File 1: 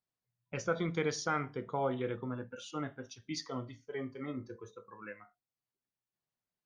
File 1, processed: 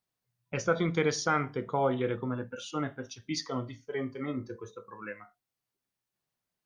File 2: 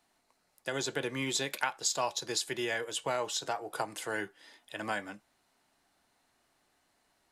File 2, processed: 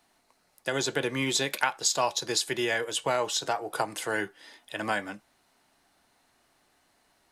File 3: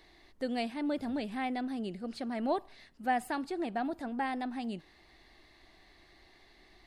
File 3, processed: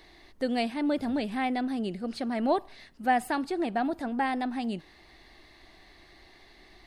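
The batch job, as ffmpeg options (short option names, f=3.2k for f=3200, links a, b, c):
-af "bandreject=f=7.3k:w=24,volume=5.5dB"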